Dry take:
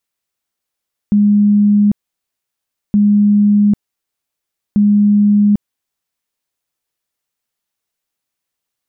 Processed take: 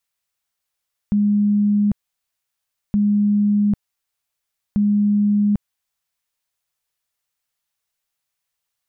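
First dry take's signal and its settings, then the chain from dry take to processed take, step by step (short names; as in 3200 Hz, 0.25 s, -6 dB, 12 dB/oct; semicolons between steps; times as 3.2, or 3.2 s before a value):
tone bursts 206 Hz, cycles 164, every 1.82 s, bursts 3, -7 dBFS
bell 300 Hz -11 dB 1.3 oct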